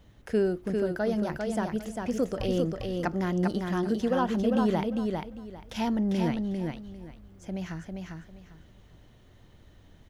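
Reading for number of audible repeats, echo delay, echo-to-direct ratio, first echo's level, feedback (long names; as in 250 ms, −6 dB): 3, 399 ms, −4.0 dB, −4.0 dB, 23%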